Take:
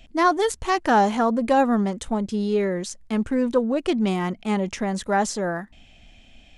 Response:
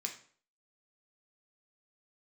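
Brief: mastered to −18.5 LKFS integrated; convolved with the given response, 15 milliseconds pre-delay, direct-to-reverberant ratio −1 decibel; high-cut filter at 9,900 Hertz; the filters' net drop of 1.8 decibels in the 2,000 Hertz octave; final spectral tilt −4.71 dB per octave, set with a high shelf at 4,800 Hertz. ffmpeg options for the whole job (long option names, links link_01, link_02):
-filter_complex "[0:a]lowpass=9900,equalizer=frequency=2000:width_type=o:gain=-3.5,highshelf=frequency=4800:gain=8,asplit=2[link_01][link_02];[1:a]atrim=start_sample=2205,adelay=15[link_03];[link_02][link_03]afir=irnorm=-1:irlink=0,volume=1.5dB[link_04];[link_01][link_04]amix=inputs=2:normalize=0,volume=0.5dB"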